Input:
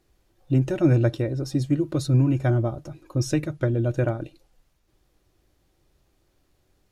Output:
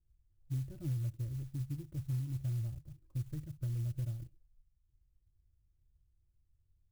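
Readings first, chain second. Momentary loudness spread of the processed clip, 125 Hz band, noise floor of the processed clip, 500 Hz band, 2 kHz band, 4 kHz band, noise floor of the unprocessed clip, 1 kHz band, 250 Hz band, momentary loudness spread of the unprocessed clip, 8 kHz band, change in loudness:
6 LU, -13.0 dB, -75 dBFS, -32.0 dB, under -25 dB, under -20 dB, -68 dBFS, under -30 dB, -22.5 dB, 10 LU, under -15 dB, -15.5 dB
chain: FFT filter 100 Hz 0 dB, 260 Hz -22 dB, 650 Hz -29 dB; compression, threshold -29 dBFS, peak gain reduction 8 dB; low-pass 7 kHz; sampling jitter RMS 0.071 ms; trim -4 dB

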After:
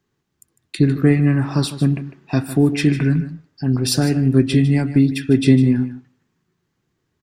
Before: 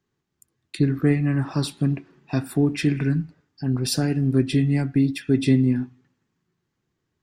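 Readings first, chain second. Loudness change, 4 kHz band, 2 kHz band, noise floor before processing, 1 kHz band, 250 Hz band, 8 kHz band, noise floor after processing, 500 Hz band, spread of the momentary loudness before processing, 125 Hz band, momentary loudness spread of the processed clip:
+5.0 dB, +5.0 dB, +5.0 dB, -78 dBFS, +5.0 dB, +5.5 dB, +5.0 dB, -73 dBFS, +5.5 dB, 9 LU, +5.5 dB, 9 LU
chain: delay 152 ms -13.5 dB; trim +5 dB

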